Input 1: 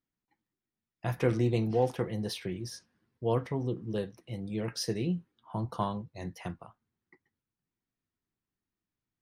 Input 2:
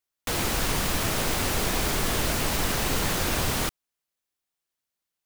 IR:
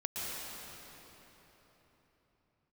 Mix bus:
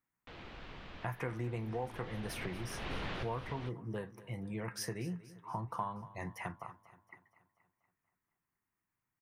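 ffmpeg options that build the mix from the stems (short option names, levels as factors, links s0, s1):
-filter_complex "[0:a]equalizer=f=125:t=o:w=1:g=5,equalizer=f=1000:t=o:w=1:g=11,equalizer=f=2000:t=o:w=1:g=10,equalizer=f=4000:t=o:w=1:g=-11,acompressor=threshold=0.02:ratio=3,volume=0.596,asplit=3[s0][s1][s2];[s1]volume=0.133[s3];[1:a]lowpass=f=3300:w=0.5412,lowpass=f=3300:w=1.3066,volume=0.237,afade=t=in:st=1.66:d=0.65:silence=0.316228[s4];[s2]apad=whole_len=231549[s5];[s4][s5]sidechaincompress=threshold=0.00501:ratio=8:attack=32:release=332[s6];[s3]aecho=0:1:238|476|714|952|1190|1428|1666|1904:1|0.55|0.303|0.166|0.0915|0.0503|0.0277|0.0152[s7];[s0][s6][s7]amix=inputs=3:normalize=0,highshelf=f=5200:g=8"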